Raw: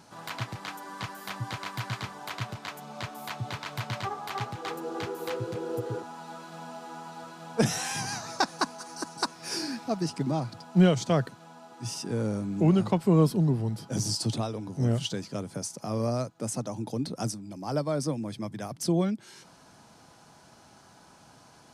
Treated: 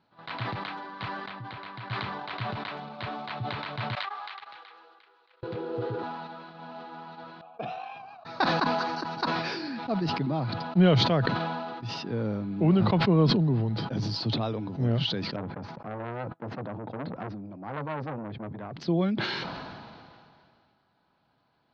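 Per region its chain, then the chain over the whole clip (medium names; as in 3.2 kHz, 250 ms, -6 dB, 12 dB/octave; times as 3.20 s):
1.17–1.91 s: distance through air 65 m + compression 4:1, threshold -37 dBFS
3.95–5.43 s: gate -31 dBFS, range -18 dB + high-pass 1.2 kHz
7.41–8.25 s: vowel filter a + bass shelf 160 Hz +8 dB
15.36–18.73 s: expander -45 dBFS + low-pass 1.7 kHz + transformer saturation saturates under 1.2 kHz
whole clip: gate -42 dBFS, range -15 dB; elliptic low-pass 4.2 kHz, stop band 60 dB; decay stretcher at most 26 dB/s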